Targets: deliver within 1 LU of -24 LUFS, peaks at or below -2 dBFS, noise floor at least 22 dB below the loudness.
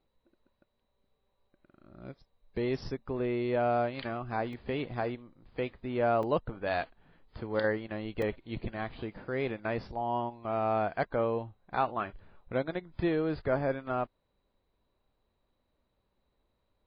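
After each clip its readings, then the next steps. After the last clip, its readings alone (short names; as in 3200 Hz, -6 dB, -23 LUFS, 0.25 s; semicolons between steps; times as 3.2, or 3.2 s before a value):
dropouts 3; longest dropout 3.1 ms; loudness -33.0 LUFS; peak -15.5 dBFS; loudness target -24.0 LUFS
-> interpolate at 4.53/6.23/8.22, 3.1 ms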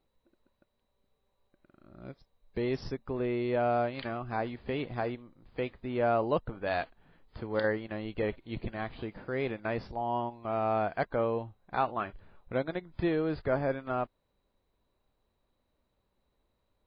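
dropouts 0; loudness -33.0 LUFS; peak -15.5 dBFS; loudness target -24.0 LUFS
-> gain +9 dB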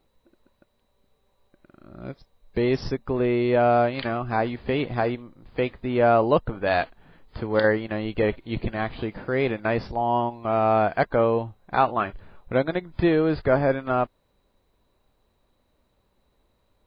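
loudness -24.0 LUFS; peak -6.5 dBFS; noise floor -69 dBFS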